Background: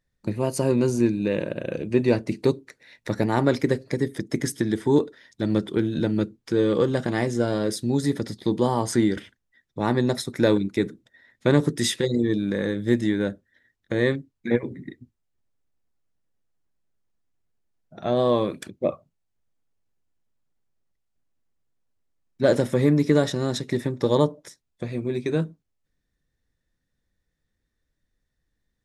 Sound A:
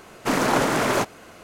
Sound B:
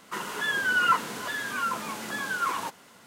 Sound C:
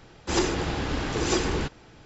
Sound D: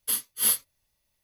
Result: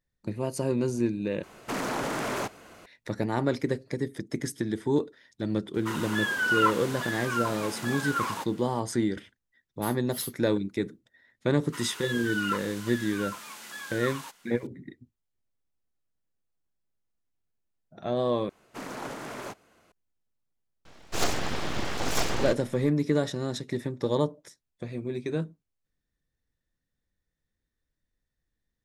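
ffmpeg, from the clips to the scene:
-filter_complex "[1:a]asplit=2[a][b];[2:a]asplit=2[c][d];[0:a]volume=-6dB[e];[a]acompressor=threshold=-24dB:ratio=3:attack=2.1:release=36:knee=1:detection=peak[f];[d]tiltshelf=f=970:g=-7.5[g];[3:a]aeval=exprs='abs(val(0))':c=same[h];[e]asplit=3[i][j][k];[i]atrim=end=1.434[l];[f]atrim=end=1.43,asetpts=PTS-STARTPTS,volume=-5dB[m];[j]atrim=start=2.856:end=18.494[n];[b]atrim=end=1.43,asetpts=PTS-STARTPTS,volume=-17dB[o];[k]atrim=start=19.916[p];[c]atrim=end=3.06,asetpts=PTS-STARTPTS,volume=-1.5dB,afade=t=in:d=0.004:c=hsin,afade=t=out:st=3.056:d=0.004:c=hsin,adelay=5740[q];[4:a]atrim=end=1.23,asetpts=PTS-STARTPTS,volume=-14dB,afade=t=in:d=0.004:c=hsin,afade=t=out:st=1.226:d=0.004:c=hsin,adelay=9740[r];[g]atrim=end=3.06,asetpts=PTS-STARTPTS,volume=-11dB,afade=t=in:d=0.004:c=hsin,afade=t=out:st=3.056:d=0.004:c=hsin,adelay=11610[s];[h]atrim=end=2.05,asetpts=PTS-STARTPTS,afade=t=in:d=0.004:c=hsin,afade=t=out:st=2.046:d=0.004:c=hsin,adelay=20850[t];[l][m]acrossfade=d=0.004:c1=hsin:c2=hsin[u];[u][n]acrossfade=d=0.004:c1=hsin:c2=hsin[v];[v][o]acrossfade=d=0.004:c1=hsin:c2=hsin[w];[w][p]acrossfade=d=0.004:c1=hsin:c2=hsin[x];[x][q][r][s][t]amix=inputs=5:normalize=0"

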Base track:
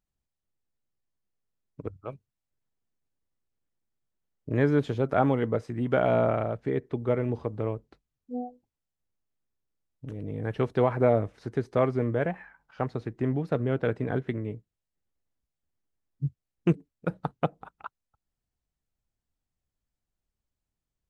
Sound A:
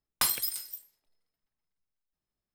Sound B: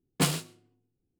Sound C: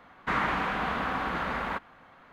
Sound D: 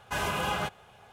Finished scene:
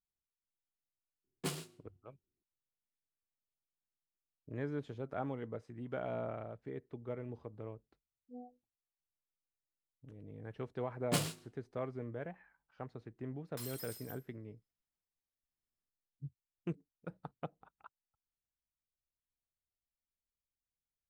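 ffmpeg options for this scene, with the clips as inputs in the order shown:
-filter_complex "[2:a]asplit=2[a][b];[0:a]volume=-16dB[c];[a]equalizer=f=380:w=6.5:g=9.5[d];[1:a]asoftclip=type=tanh:threshold=-36dB[e];[d]atrim=end=1.19,asetpts=PTS-STARTPTS,volume=-14dB,afade=t=in:d=0.004:c=hsin,afade=t=out:st=1.186:d=0.004:c=hsin,adelay=1240[f];[b]atrim=end=1.19,asetpts=PTS-STARTPTS,volume=-8dB,afade=t=in:d=0.004:c=hsin,afade=t=out:st=1.186:d=0.004:c=hsin,adelay=10920[g];[e]atrim=end=2.54,asetpts=PTS-STARTPTS,volume=-9.5dB,afade=t=in:d=0.004:c=hsin,afade=t=out:st=2.536:d=0.004:c=hsin,adelay=13360[h];[c][f][g][h]amix=inputs=4:normalize=0"

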